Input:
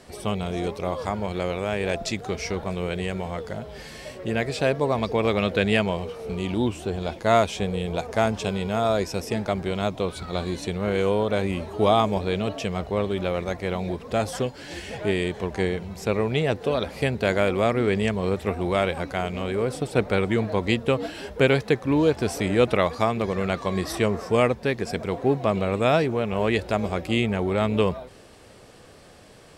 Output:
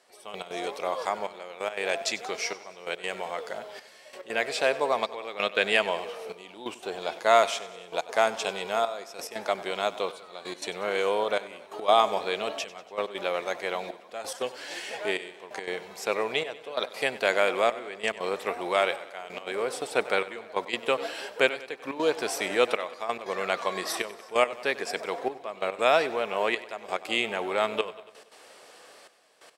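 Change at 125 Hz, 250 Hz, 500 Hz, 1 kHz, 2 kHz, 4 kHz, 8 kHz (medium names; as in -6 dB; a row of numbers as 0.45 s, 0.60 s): -25.0 dB, -14.5 dB, -4.5 dB, -0.5 dB, +0.5 dB, +0.5 dB, +0.5 dB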